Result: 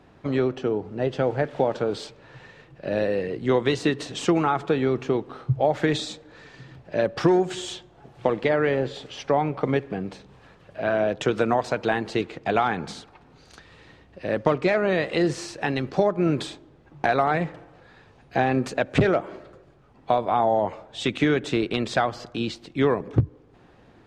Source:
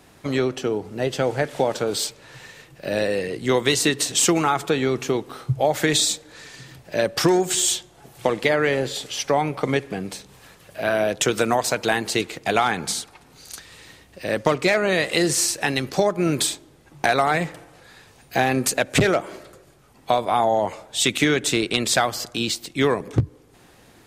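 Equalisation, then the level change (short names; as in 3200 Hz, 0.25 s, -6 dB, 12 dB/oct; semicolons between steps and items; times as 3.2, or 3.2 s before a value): tape spacing loss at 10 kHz 21 dB; bell 2100 Hz -2.5 dB 0.23 oct; high shelf 5600 Hz -6.5 dB; 0.0 dB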